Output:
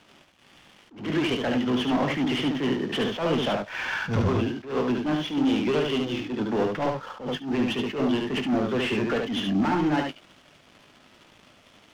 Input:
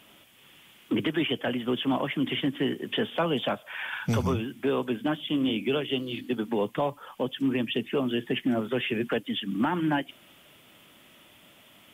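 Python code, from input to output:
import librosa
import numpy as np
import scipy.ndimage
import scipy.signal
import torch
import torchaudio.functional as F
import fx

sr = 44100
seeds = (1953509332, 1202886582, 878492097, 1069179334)

p1 = fx.cvsd(x, sr, bps=32000)
p2 = fx.doubler(p1, sr, ms=20.0, db=-11)
p3 = fx.leveller(p2, sr, passes=3)
p4 = fx.high_shelf(p3, sr, hz=3000.0, db=-8.5)
p5 = p4 + fx.echo_single(p4, sr, ms=72, db=-4.0, dry=0)
p6 = fx.attack_slew(p5, sr, db_per_s=140.0)
y = p6 * librosa.db_to_amplitude(-4.5)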